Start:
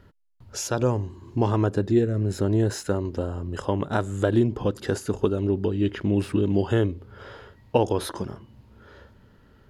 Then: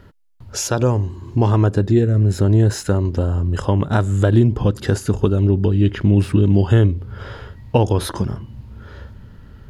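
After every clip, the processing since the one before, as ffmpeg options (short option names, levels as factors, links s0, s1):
-filter_complex "[0:a]asubboost=boost=2.5:cutoff=210,asplit=2[s0][s1];[s1]acompressor=threshold=0.0501:ratio=6,volume=0.708[s2];[s0][s2]amix=inputs=2:normalize=0,volume=1.41"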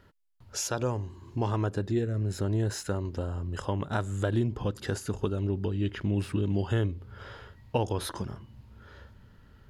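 -af "lowshelf=f=450:g=-6.5,volume=0.376"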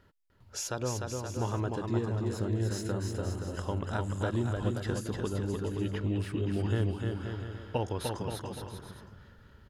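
-af "aecho=1:1:300|525|693.8|820.3|915.2:0.631|0.398|0.251|0.158|0.1,volume=0.631"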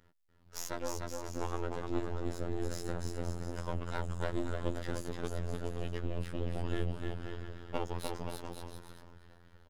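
-filter_complex "[0:a]asplit=2[s0][s1];[s1]adelay=635,lowpass=f=4600:p=1,volume=0.106,asplit=2[s2][s3];[s3]adelay=635,lowpass=f=4600:p=1,volume=0.4,asplit=2[s4][s5];[s5]adelay=635,lowpass=f=4600:p=1,volume=0.4[s6];[s0][s2][s4][s6]amix=inputs=4:normalize=0,aeval=exprs='max(val(0),0)':c=same,afftfilt=real='hypot(re,im)*cos(PI*b)':imag='0':win_size=2048:overlap=0.75,volume=1.26"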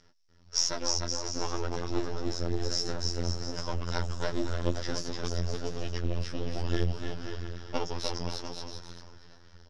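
-af "flanger=delay=6.3:depth=6:regen=36:speed=1.4:shape=triangular,lowpass=f=5500:t=q:w=10,volume=2.24"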